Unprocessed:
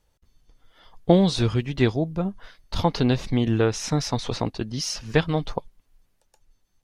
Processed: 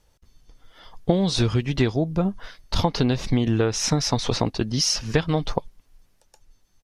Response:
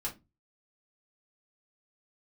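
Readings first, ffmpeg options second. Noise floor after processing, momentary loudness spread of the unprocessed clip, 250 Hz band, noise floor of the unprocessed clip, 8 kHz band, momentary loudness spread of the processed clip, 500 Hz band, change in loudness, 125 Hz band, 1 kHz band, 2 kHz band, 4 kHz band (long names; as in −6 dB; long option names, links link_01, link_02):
−63 dBFS, 10 LU, 0.0 dB, −69 dBFS, +6.0 dB, 7 LU, −1.0 dB, +1.0 dB, +1.0 dB, +0.5 dB, 0.0 dB, +4.5 dB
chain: -af "equalizer=frequency=5500:width_type=o:width=0.41:gain=3.5,acompressor=threshold=-22dB:ratio=6,aresample=32000,aresample=44100,volume=5.5dB"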